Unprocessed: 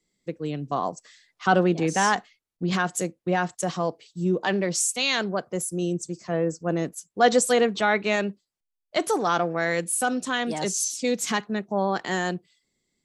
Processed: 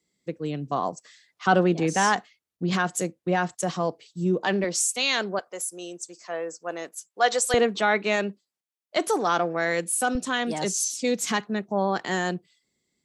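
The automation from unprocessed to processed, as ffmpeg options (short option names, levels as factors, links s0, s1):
-af "asetnsamples=n=441:p=0,asendcmd='4.64 highpass f 240;5.39 highpass f 650;7.54 highpass f 180;10.15 highpass f 56',highpass=68"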